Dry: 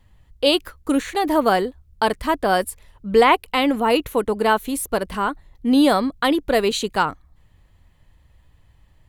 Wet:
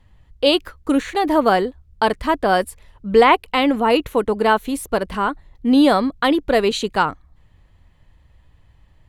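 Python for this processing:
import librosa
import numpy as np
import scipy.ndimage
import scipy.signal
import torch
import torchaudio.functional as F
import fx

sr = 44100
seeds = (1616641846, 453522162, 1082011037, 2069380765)

y = fx.high_shelf(x, sr, hz=8300.0, db=-11.0)
y = F.gain(torch.from_numpy(y), 2.0).numpy()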